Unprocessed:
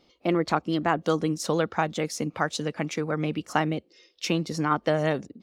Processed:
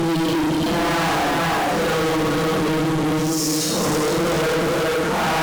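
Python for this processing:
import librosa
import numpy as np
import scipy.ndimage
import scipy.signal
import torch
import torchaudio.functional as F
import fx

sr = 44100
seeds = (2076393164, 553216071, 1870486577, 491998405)

y = fx.low_shelf(x, sr, hz=440.0, db=4.5)
y = fx.paulstretch(y, sr, seeds[0], factor=4.8, window_s=0.1, from_s=0.69)
y = fx.echo_thinned(y, sr, ms=420, feedback_pct=44, hz=340.0, wet_db=-3.0)
y = fx.fuzz(y, sr, gain_db=37.0, gate_db=-41.0)
y = y * 10.0 ** (-5.5 / 20.0)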